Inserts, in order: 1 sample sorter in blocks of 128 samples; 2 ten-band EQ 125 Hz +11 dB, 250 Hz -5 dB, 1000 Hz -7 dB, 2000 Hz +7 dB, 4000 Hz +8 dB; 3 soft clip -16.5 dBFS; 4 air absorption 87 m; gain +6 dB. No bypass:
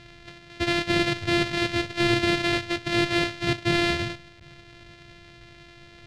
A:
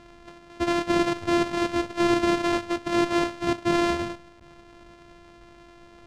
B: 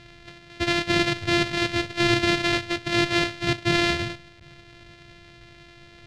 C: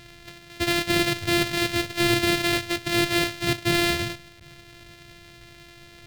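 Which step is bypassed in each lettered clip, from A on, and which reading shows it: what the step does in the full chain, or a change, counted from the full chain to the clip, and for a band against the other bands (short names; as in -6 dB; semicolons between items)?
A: 2, crest factor change -3.0 dB; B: 3, distortion -18 dB; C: 4, 8 kHz band +7.5 dB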